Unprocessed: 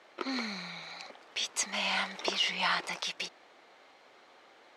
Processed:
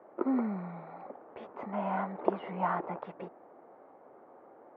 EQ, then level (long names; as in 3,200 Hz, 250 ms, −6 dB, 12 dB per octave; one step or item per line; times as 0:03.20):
high-pass filter 95 Hz
Bessel low-pass filter 700 Hz, order 4
+8.5 dB